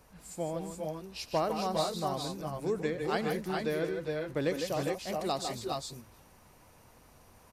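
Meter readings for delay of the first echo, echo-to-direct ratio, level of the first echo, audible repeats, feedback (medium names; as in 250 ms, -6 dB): 85 ms, -1.0 dB, -18.5 dB, 3, no regular repeats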